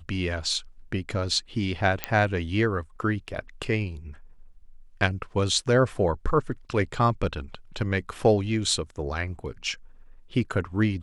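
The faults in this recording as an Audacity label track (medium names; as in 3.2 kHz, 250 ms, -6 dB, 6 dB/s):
2.040000	2.040000	pop -8 dBFS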